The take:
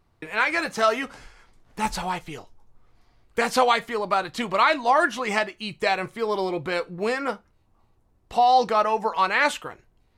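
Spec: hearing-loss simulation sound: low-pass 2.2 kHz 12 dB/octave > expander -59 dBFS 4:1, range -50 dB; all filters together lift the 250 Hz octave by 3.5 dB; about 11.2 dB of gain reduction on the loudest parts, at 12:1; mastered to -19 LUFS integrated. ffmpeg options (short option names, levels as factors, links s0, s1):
-af "equalizer=f=250:t=o:g=4.5,acompressor=threshold=0.0562:ratio=12,lowpass=2200,agate=range=0.00316:threshold=0.00112:ratio=4,volume=4.22"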